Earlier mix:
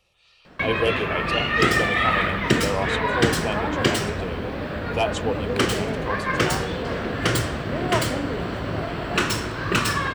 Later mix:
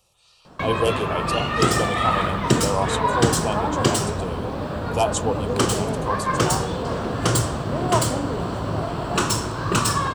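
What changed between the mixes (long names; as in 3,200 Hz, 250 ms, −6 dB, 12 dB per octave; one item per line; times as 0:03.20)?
speech: add high-shelf EQ 7,900 Hz +10.5 dB
master: add octave-band graphic EQ 125/1,000/2,000/8,000 Hz +4/+7/−10/+8 dB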